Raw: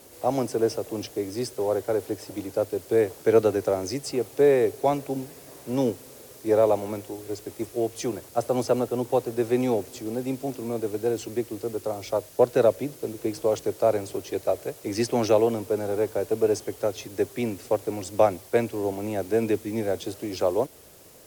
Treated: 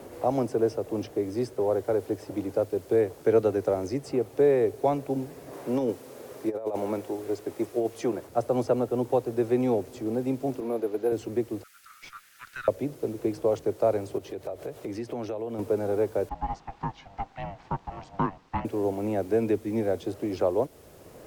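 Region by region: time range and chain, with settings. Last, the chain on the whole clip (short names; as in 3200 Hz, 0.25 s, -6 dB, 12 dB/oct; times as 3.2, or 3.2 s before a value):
5.53–8.27 HPF 280 Hz 6 dB/oct + negative-ratio compressor -26 dBFS, ratio -0.5
10.6–11.12 HPF 290 Hz + careless resampling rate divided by 4×, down filtered, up hold
11.63–12.68 steep high-pass 1300 Hz 72 dB/oct + tube stage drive 29 dB, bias 0.5
14.18–15.59 HPF 41 Hz + compressor 4:1, threshold -36 dBFS + bell 3400 Hz +3.5 dB 0.74 oct
16.29–18.65 HPF 750 Hz 6 dB/oct + ring modulator 390 Hz + air absorption 170 m
whole clip: high shelf 2300 Hz -11 dB; three-band squash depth 40%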